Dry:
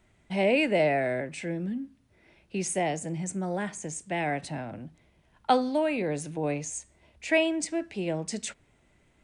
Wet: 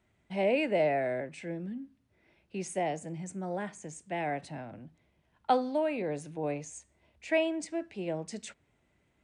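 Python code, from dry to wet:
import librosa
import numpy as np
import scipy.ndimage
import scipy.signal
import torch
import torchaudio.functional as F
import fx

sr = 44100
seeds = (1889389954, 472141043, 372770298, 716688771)

y = fx.dynamic_eq(x, sr, hz=640.0, q=0.75, threshold_db=-35.0, ratio=4.0, max_db=4)
y = scipy.signal.sosfilt(scipy.signal.butter(2, 50.0, 'highpass', fs=sr, output='sos'), y)
y = fx.high_shelf(y, sr, hz=6400.0, db=-6.0)
y = y * librosa.db_to_amplitude(-6.5)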